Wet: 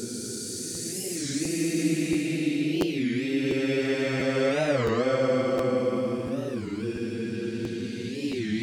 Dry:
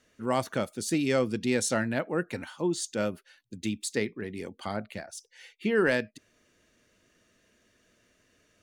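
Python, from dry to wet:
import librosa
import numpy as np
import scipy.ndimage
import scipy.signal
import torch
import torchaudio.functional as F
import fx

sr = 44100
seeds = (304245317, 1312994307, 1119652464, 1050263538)

y = fx.paulstretch(x, sr, seeds[0], factor=13.0, window_s=0.25, from_s=0.79)
y = fx.buffer_crackle(y, sr, first_s=0.74, period_s=0.69, block=512, kind='repeat')
y = fx.record_warp(y, sr, rpm=33.33, depth_cents=250.0)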